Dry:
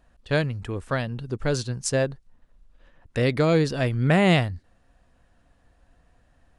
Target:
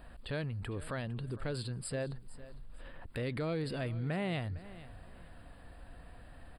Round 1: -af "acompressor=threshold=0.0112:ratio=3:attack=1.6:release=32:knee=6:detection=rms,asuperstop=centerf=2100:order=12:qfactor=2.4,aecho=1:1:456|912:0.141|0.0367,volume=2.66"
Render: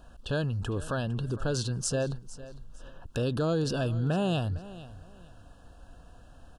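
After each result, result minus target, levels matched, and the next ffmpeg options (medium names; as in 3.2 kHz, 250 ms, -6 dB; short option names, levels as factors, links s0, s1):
compression: peak gain reduction -7.5 dB; 8 kHz band +4.5 dB
-af "acompressor=threshold=0.00299:ratio=3:attack=1.6:release=32:knee=6:detection=rms,asuperstop=centerf=2100:order=12:qfactor=2.4,aecho=1:1:456|912:0.141|0.0367,volume=2.66"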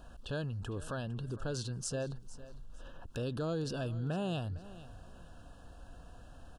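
8 kHz band +4.5 dB
-af "acompressor=threshold=0.00299:ratio=3:attack=1.6:release=32:knee=6:detection=rms,asuperstop=centerf=6200:order=12:qfactor=2.4,aecho=1:1:456|912:0.141|0.0367,volume=2.66"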